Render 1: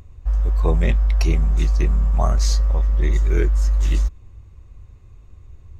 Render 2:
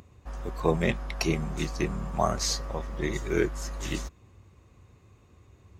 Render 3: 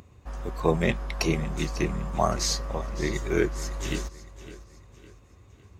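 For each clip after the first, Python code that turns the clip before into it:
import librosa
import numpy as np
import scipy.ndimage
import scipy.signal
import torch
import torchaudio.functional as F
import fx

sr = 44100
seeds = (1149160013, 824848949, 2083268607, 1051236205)

y1 = scipy.signal.sosfilt(scipy.signal.butter(2, 150.0, 'highpass', fs=sr, output='sos'), x)
y2 = fx.echo_feedback(y1, sr, ms=558, feedback_pct=41, wet_db=-16.5)
y2 = y2 * 10.0 ** (1.5 / 20.0)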